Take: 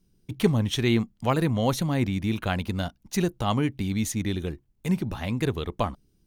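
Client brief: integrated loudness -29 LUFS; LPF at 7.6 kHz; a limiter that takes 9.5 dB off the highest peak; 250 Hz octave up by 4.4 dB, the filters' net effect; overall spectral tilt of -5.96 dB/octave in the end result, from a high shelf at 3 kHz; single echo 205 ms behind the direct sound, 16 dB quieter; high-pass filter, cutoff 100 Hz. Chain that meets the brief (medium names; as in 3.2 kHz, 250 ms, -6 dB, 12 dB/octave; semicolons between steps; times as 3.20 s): high-pass 100 Hz; low-pass 7.6 kHz; peaking EQ 250 Hz +6 dB; treble shelf 3 kHz +4 dB; peak limiter -14 dBFS; delay 205 ms -16 dB; trim -3 dB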